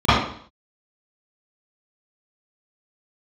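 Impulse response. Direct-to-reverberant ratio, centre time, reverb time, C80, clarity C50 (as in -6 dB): -21.0 dB, 73 ms, 0.55 s, 3.5 dB, -2.0 dB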